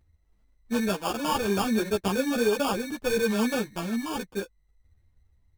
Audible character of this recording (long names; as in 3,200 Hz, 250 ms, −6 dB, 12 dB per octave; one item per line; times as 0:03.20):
aliases and images of a low sample rate 2,000 Hz, jitter 0%
tremolo triangle 0.65 Hz, depth 35%
a shimmering, thickened sound